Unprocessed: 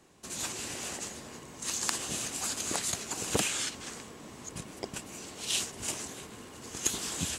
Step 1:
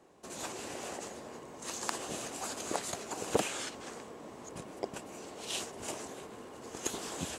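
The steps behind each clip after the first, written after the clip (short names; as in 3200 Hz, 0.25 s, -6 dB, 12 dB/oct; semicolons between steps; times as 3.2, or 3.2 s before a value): bell 590 Hz +12.5 dB 2.6 oct; gain -8.5 dB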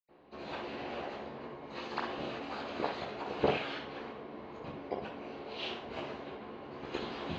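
reverb RT60 0.45 s, pre-delay 76 ms; gain +13.5 dB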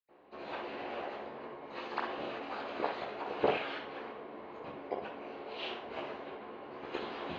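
tone controls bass -10 dB, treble -10 dB; gain +1 dB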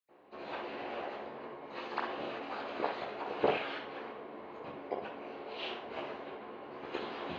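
HPF 60 Hz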